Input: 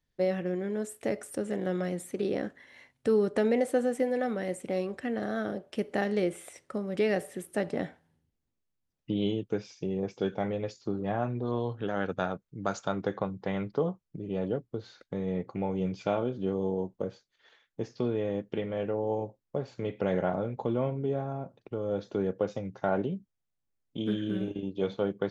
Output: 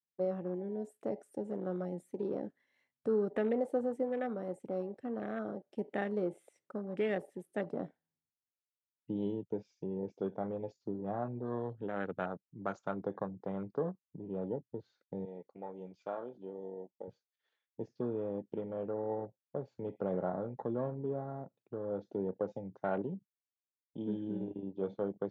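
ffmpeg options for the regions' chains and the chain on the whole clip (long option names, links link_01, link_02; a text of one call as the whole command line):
ffmpeg -i in.wav -filter_complex "[0:a]asettb=1/sr,asplit=3[link_01][link_02][link_03];[link_01]atrim=end=15.254[link_04];[link_02]atrim=start=15.25:end=17.08,asetpts=PTS-STARTPTS,afade=type=in:duration=0.004:curve=qsin,afade=type=out:start_time=1.826:duration=0.004:curve=qsin,highpass=frequency=800:poles=1,agate=range=-33dB:threshold=-53dB:ratio=3:release=100:detection=peak[link_05];[link_03]atrim=start=17.076[link_06];[link_04][link_05]acrossfade=duration=0.004:curve1=hsin:curve2=qsin[link_07];[link_07][link_06]acrossfade=duration=0.004:curve1=qsin:curve2=hsin,afwtdn=0.0126,highpass=120,volume=-6dB" out.wav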